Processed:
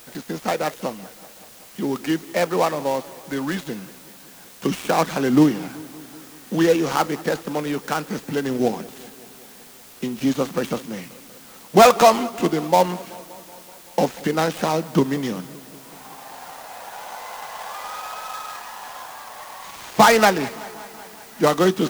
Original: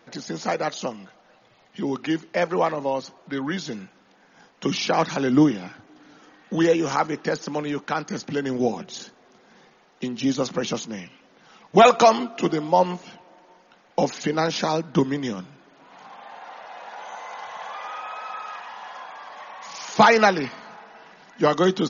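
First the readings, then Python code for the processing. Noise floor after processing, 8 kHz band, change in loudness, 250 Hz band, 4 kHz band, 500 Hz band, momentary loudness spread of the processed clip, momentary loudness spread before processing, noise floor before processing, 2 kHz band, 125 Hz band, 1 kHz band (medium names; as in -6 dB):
-45 dBFS, no reading, +2.0 dB, +2.0 dB, +1.5 dB, +2.0 dB, 22 LU, 20 LU, -57 dBFS, +1.0 dB, +2.0 dB, +1.5 dB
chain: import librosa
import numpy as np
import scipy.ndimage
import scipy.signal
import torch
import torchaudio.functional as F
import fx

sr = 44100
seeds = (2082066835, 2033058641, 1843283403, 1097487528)

y = fx.dead_time(x, sr, dead_ms=0.12)
y = fx.quant_dither(y, sr, seeds[0], bits=8, dither='triangular')
y = fx.echo_warbled(y, sr, ms=190, feedback_pct=69, rate_hz=2.8, cents=71, wet_db=-21.0)
y = F.gain(torch.from_numpy(y), 2.0).numpy()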